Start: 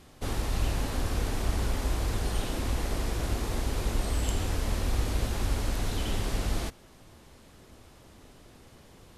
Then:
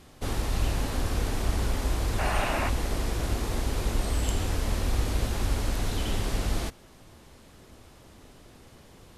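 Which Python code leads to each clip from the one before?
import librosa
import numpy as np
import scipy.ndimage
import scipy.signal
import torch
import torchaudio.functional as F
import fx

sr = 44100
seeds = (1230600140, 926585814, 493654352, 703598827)

y = fx.spec_box(x, sr, start_s=2.19, length_s=0.5, low_hz=540.0, high_hz=2900.0, gain_db=10)
y = F.gain(torch.from_numpy(y), 1.5).numpy()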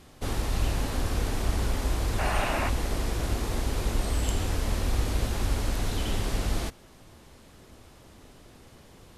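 y = x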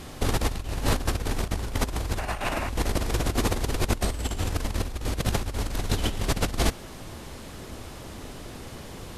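y = fx.over_compress(x, sr, threshold_db=-31.0, ratio=-0.5)
y = F.gain(torch.from_numpy(y), 6.0).numpy()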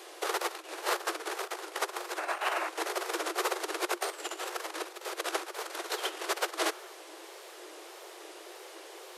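y = scipy.signal.sosfilt(scipy.signal.cheby1(10, 1.0, 330.0, 'highpass', fs=sr, output='sos'), x)
y = fx.wow_flutter(y, sr, seeds[0], rate_hz=2.1, depth_cents=99.0)
y = fx.dynamic_eq(y, sr, hz=1300.0, q=1.6, threshold_db=-47.0, ratio=4.0, max_db=6)
y = F.gain(torch.from_numpy(y), -3.0).numpy()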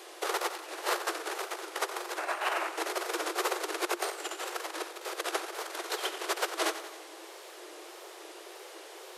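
y = fx.echo_feedback(x, sr, ms=90, feedback_pct=58, wet_db=-12.0)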